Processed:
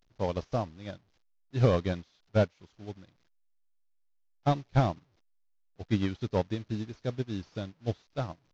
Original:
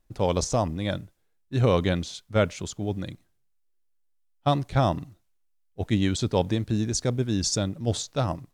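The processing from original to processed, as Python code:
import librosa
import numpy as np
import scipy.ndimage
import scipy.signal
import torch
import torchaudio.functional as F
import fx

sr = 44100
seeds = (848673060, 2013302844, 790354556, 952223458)

y = fx.delta_mod(x, sr, bps=32000, step_db=-35.0)
y = fx.upward_expand(y, sr, threshold_db=-37.0, expansion=2.5)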